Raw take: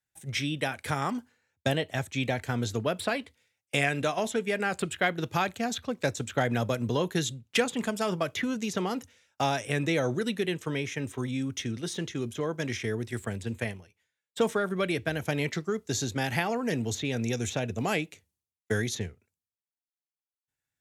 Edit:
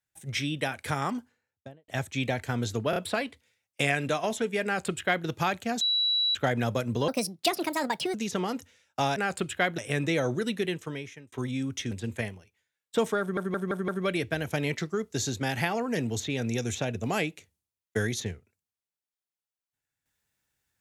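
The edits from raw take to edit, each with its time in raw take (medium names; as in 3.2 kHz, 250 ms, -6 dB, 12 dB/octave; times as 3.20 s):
1.07–1.88 s: studio fade out
2.90 s: stutter 0.03 s, 3 plays
4.58–5.20 s: copy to 9.58 s
5.75–6.29 s: bleep 3.92 kHz -22.5 dBFS
7.02–8.56 s: speed 145%
10.45–11.12 s: fade out
11.71–13.34 s: delete
14.63 s: stutter 0.17 s, 5 plays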